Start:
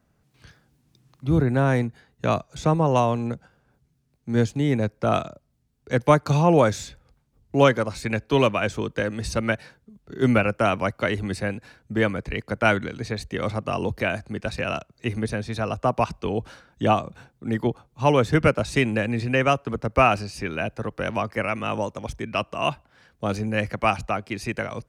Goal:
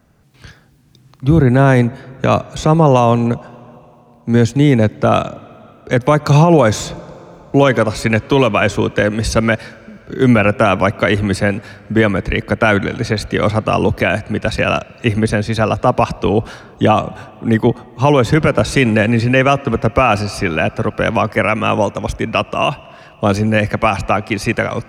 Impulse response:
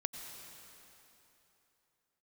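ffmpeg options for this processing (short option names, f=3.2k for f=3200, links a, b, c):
-filter_complex "[0:a]asplit=2[a][b];[1:a]atrim=start_sample=2205,lowpass=5.4k[c];[b][c]afir=irnorm=-1:irlink=0,volume=-18dB[d];[a][d]amix=inputs=2:normalize=0,alimiter=level_in=12dB:limit=-1dB:release=50:level=0:latency=1,volume=-1dB"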